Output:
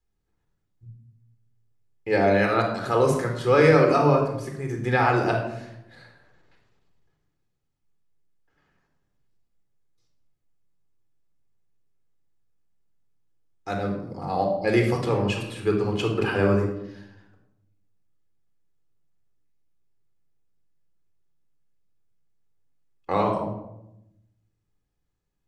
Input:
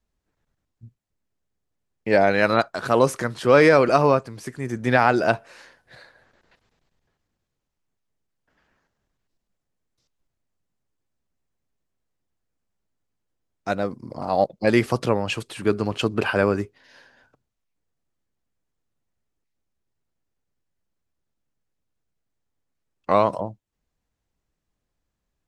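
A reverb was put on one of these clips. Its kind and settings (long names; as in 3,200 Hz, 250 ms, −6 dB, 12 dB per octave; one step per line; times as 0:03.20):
rectangular room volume 2,400 cubic metres, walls furnished, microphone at 4 metres
level −6.5 dB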